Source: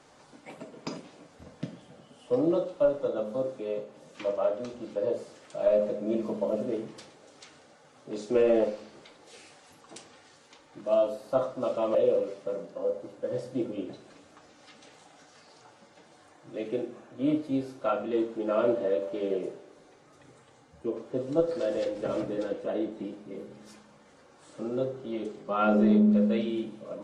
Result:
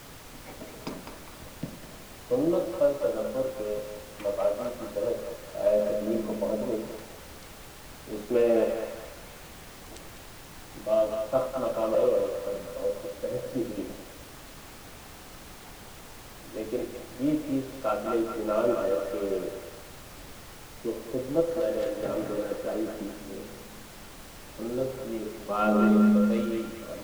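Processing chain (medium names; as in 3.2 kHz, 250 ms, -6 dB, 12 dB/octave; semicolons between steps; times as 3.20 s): local Wiener filter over 9 samples; band-passed feedback delay 204 ms, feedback 61%, band-pass 1.6 kHz, level -3 dB; added noise pink -46 dBFS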